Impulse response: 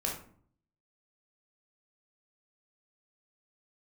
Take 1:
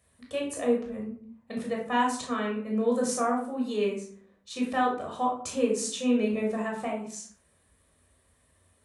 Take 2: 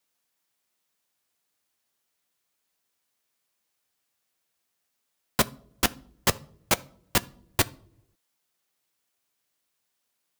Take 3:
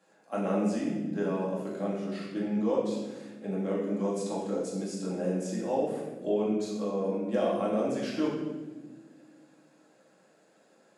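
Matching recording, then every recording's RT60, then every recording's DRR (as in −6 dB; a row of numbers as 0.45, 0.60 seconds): 1; 0.55 s, non-exponential decay, non-exponential decay; −1.5, 14.0, −6.0 decibels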